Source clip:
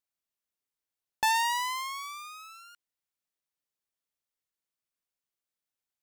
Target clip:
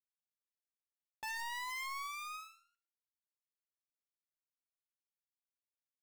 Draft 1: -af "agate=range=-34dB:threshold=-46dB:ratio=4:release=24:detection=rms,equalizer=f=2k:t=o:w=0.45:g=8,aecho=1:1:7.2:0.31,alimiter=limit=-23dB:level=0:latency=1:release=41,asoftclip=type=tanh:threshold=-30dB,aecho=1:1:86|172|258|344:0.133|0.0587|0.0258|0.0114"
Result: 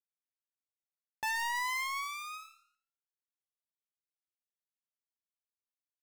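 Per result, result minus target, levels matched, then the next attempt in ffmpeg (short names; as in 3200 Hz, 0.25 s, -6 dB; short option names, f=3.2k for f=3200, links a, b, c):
echo 24 ms late; soft clip: distortion -7 dB
-af "agate=range=-34dB:threshold=-46dB:ratio=4:release=24:detection=rms,equalizer=f=2k:t=o:w=0.45:g=8,aecho=1:1:7.2:0.31,alimiter=limit=-23dB:level=0:latency=1:release=41,asoftclip=type=tanh:threshold=-30dB,aecho=1:1:62|124|186|248:0.133|0.0587|0.0258|0.0114"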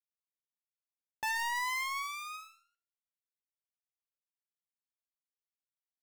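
soft clip: distortion -7 dB
-af "agate=range=-34dB:threshold=-46dB:ratio=4:release=24:detection=rms,equalizer=f=2k:t=o:w=0.45:g=8,aecho=1:1:7.2:0.31,alimiter=limit=-23dB:level=0:latency=1:release=41,asoftclip=type=tanh:threshold=-40dB,aecho=1:1:62|124|186|248:0.133|0.0587|0.0258|0.0114"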